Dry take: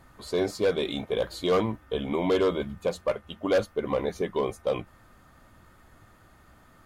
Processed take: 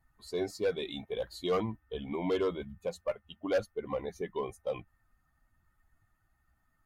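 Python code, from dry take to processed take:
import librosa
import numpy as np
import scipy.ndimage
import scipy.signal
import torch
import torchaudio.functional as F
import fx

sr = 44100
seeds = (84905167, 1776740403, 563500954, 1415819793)

y = fx.bin_expand(x, sr, power=1.5)
y = F.gain(torch.from_numpy(y), -4.5).numpy()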